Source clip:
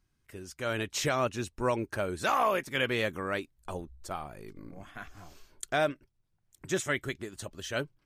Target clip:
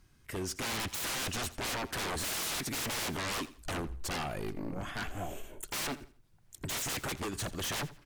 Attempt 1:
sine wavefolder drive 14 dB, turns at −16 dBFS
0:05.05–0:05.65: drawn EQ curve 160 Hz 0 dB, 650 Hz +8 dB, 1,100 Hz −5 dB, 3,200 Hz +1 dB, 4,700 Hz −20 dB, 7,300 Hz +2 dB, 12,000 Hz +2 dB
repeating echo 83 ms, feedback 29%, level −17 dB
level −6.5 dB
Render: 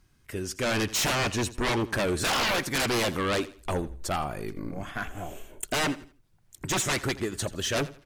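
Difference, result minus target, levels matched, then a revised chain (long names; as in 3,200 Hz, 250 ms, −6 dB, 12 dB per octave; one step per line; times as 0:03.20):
sine wavefolder: distortion −12 dB
sine wavefolder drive 14 dB, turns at −25.5 dBFS
0:05.05–0:05.65: drawn EQ curve 160 Hz 0 dB, 650 Hz +8 dB, 1,100 Hz −5 dB, 3,200 Hz +1 dB, 4,700 Hz −20 dB, 7,300 Hz +2 dB, 12,000 Hz +2 dB
repeating echo 83 ms, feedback 29%, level −17 dB
level −6.5 dB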